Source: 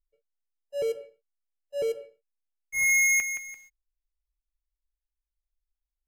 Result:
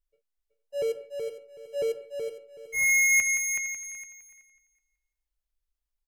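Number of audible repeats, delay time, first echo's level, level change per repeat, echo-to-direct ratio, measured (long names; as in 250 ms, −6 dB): 6, 375 ms, −5.5 dB, repeats not evenly spaced, −5.0 dB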